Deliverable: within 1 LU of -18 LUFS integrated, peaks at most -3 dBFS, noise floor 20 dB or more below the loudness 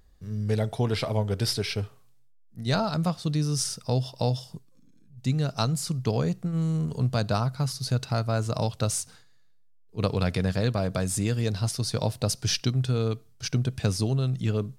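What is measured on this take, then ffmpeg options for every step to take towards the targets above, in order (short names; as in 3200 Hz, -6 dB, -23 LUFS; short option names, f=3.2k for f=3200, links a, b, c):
loudness -27.5 LUFS; peak -10.0 dBFS; loudness target -18.0 LUFS
-> -af "volume=9.5dB,alimiter=limit=-3dB:level=0:latency=1"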